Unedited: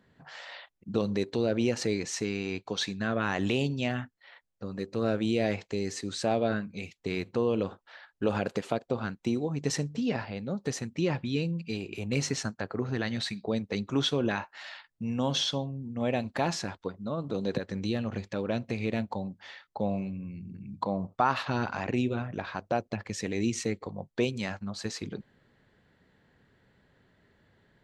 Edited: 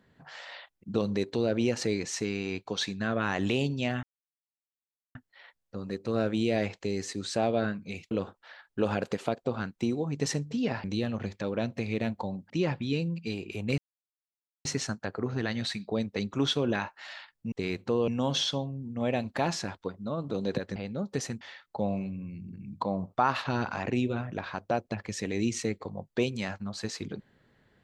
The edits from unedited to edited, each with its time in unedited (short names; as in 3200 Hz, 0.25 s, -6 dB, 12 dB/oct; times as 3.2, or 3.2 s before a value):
4.03 insert silence 1.12 s
6.99–7.55 move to 15.08
10.28–10.93 swap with 17.76–19.42
12.21 insert silence 0.87 s